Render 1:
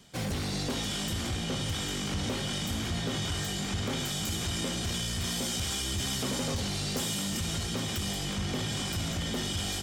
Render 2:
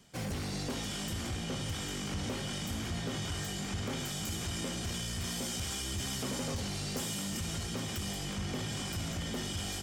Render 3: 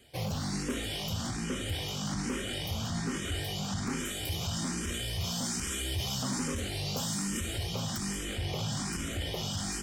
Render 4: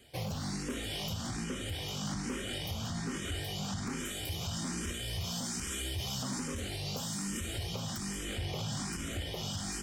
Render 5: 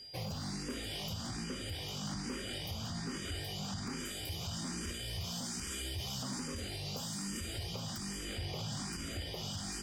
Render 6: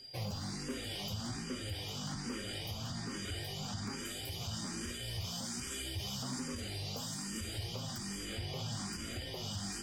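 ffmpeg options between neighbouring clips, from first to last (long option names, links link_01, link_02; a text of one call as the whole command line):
ffmpeg -i in.wav -af "equalizer=frequency=3700:width=3.4:gain=-4.5,volume=-4dB" out.wav
ffmpeg -i in.wav -filter_complex "[0:a]asplit=2[link_01][link_02];[link_02]afreqshift=1.2[link_03];[link_01][link_03]amix=inputs=2:normalize=1,volume=5.5dB" out.wav
ffmpeg -i in.wav -af "alimiter=level_in=3.5dB:limit=-24dB:level=0:latency=1:release=424,volume=-3.5dB" out.wav
ffmpeg -i in.wav -af "aeval=exprs='val(0)+0.00562*sin(2*PI*4800*n/s)':channel_layout=same,volume=-3.5dB" out.wav
ffmpeg -i in.wav -af "flanger=delay=7.6:depth=2.2:regen=38:speed=1.4:shape=sinusoidal,volume=3.5dB" out.wav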